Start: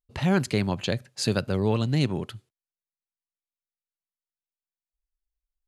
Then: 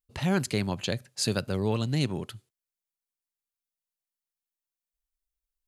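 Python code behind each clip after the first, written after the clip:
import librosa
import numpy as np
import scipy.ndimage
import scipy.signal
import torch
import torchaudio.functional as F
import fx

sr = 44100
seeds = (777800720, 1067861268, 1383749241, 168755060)

y = fx.high_shelf(x, sr, hz=5600.0, db=8.5)
y = F.gain(torch.from_numpy(y), -3.5).numpy()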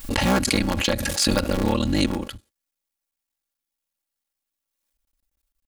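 y = fx.cycle_switch(x, sr, every=3, mode='muted')
y = y + 0.82 * np.pad(y, (int(3.6 * sr / 1000.0), 0))[:len(y)]
y = fx.pre_swell(y, sr, db_per_s=31.0)
y = F.gain(torch.from_numpy(y), 6.0).numpy()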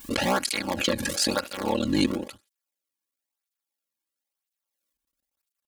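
y = fx.flanger_cancel(x, sr, hz=1.0, depth_ms=1.6)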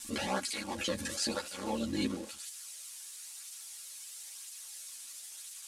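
y = x + 0.5 * 10.0 ** (-24.5 / 20.0) * np.diff(np.sign(x), prepend=np.sign(x[:1]))
y = scipy.signal.sosfilt(scipy.signal.butter(4, 10000.0, 'lowpass', fs=sr, output='sos'), y)
y = fx.ensemble(y, sr)
y = F.gain(torch.from_numpy(y), -6.5).numpy()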